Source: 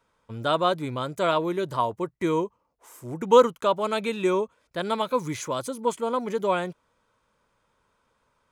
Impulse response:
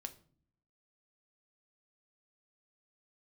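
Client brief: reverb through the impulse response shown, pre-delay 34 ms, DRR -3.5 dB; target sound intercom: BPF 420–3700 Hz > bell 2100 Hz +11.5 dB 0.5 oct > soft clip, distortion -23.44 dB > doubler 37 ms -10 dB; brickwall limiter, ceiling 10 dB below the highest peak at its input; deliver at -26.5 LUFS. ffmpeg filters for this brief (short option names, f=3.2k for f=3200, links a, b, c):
-filter_complex "[0:a]alimiter=limit=-16dB:level=0:latency=1,asplit=2[a][b];[1:a]atrim=start_sample=2205,adelay=34[c];[b][c]afir=irnorm=-1:irlink=0,volume=7dB[d];[a][d]amix=inputs=2:normalize=0,highpass=420,lowpass=3.7k,equalizer=f=2.1k:t=o:w=0.5:g=11.5,asoftclip=threshold=-10dB,asplit=2[e][f];[f]adelay=37,volume=-10dB[g];[e][g]amix=inputs=2:normalize=0,volume=-2.5dB"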